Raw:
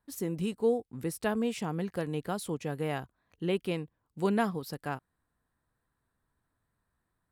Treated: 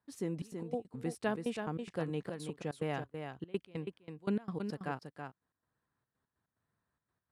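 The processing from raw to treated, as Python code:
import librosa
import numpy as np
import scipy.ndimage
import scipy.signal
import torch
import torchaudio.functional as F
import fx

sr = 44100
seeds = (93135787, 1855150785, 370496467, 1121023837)

p1 = scipy.signal.sosfilt(scipy.signal.butter(2, 92.0, 'highpass', fs=sr, output='sos'), x)
p2 = fx.peak_eq(p1, sr, hz=9500.0, db=5.0, octaves=0.24)
p3 = fx.step_gate(p2, sr, bpm=144, pattern='xxxx.x.x.', floor_db=-24.0, edge_ms=4.5)
p4 = fx.air_absorb(p3, sr, metres=71.0)
p5 = p4 + fx.echo_single(p4, sr, ms=327, db=-6.5, dry=0)
y = F.gain(torch.from_numpy(p5), -3.0).numpy()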